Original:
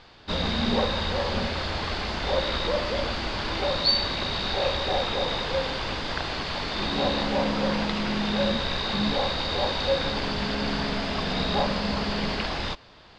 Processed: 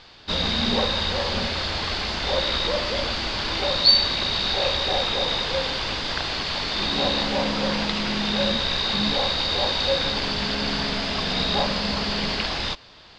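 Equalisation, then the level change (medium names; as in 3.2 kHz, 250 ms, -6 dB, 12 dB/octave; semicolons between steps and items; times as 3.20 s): peaking EQ 4.9 kHz +7 dB 2.2 oct; 0.0 dB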